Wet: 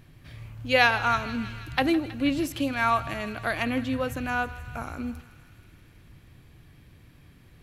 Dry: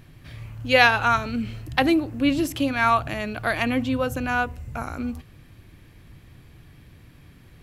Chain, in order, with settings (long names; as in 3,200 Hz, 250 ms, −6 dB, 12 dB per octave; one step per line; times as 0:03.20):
feedback echo with a high-pass in the loop 160 ms, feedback 78%, high-pass 870 Hz, level −15 dB
level −4 dB